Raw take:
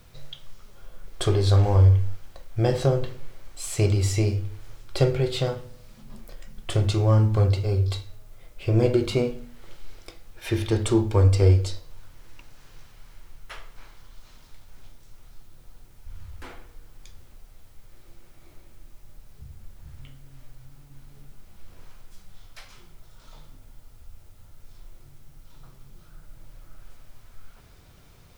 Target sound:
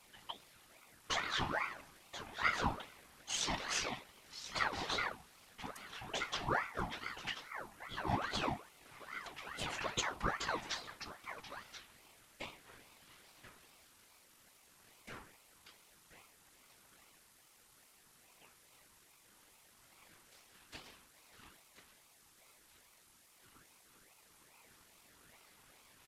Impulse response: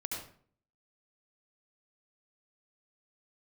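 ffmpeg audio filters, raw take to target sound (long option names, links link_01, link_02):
-filter_complex "[0:a]flanger=delay=16.5:depth=2.2:speed=0.49,highpass=frequency=610:width=0.5412,highpass=frequency=610:width=1.3066,highshelf=frequency=8500:gain=4,asetrate=24750,aresample=44100,atempo=1.7818,afftfilt=real='hypot(re,im)*cos(2*PI*random(0))':imag='hypot(re,im)*sin(2*PI*random(1))':win_size=512:overlap=0.75,asplit=2[link_01][link_02];[link_02]aecho=0:1:1124:0.266[link_03];[link_01][link_03]amix=inputs=2:normalize=0,asetrate=48000,aresample=44100,aeval=exprs='val(0)*sin(2*PI*1100*n/s+1100*0.6/2.4*sin(2*PI*2.4*n/s))':channel_layout=same,volume=8dB"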